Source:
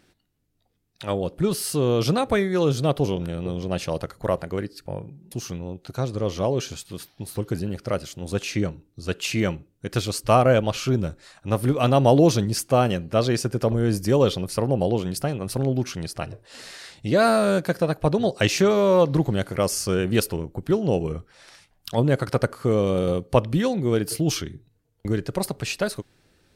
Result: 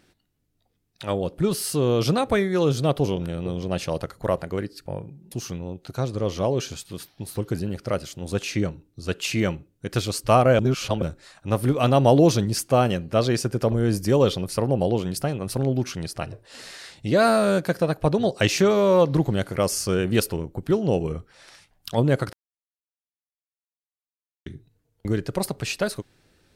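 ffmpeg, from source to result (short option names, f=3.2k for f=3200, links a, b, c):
-filter_complex "[0:a]asplit=5[a][b][c][d][e];[a]atrim=end=10.592[f];[b]atrim=start=10.588:end=11.022,asetpts=PTS-STARTPTS,areverse[g];[c]atrim=start=11.018:end=22.33,asetpts=PTS-STARTPTS,afade=t=out:st=11.308:d=0.004:c=hsin[h];[d]atrim=start=22.33:end=24.46,asetpts=PTS-STARTPTS,volume=0[i];[e]atrim=start=24.46,asetpts=PTS-STARTPTS,afade=t=in:d=0.004:c=hsin[j];[f][g]acrossfade=d=0.004:c1=hsin:c2=hsin[k];[h][i][j]concat=n=3:v=0:a=1[l];[k][l]acrossfade=d=0.004:c1=hsin:c2=hsin"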